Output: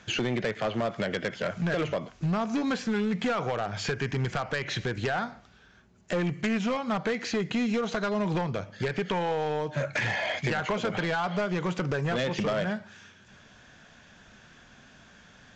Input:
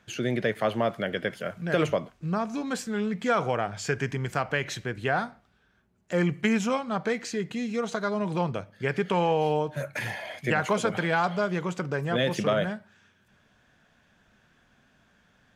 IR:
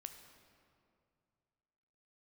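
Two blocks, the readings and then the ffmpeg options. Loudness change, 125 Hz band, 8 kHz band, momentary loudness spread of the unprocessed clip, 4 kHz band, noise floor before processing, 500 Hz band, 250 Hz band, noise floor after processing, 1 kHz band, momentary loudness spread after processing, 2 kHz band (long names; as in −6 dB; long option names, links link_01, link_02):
−1.5 dB, 0.0 dB, −3.0 dB, 7 LU, +1.0 dB, −65 dBFS, −2.5 dB, 0.0 dB, −56 dBFS, −2.5 dB, 3 LU, −1.0 dB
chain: -filter_complex "[0:a]acrossover=split=4000[link_01][link_02];[link_02]acompressor=threshold=-60dB:ratio=4:attack=1:release=60[link_03];[link_01][link_03]amix=inputs=2:normalize=0,highshelf=frequency=4000:gain=7.5,acompressor=threshold=-32dB:ratio=6,aresample=16000,asoftclip=type=hard:threshold=-31.5dB,aresample=44100,volume=8.5dB"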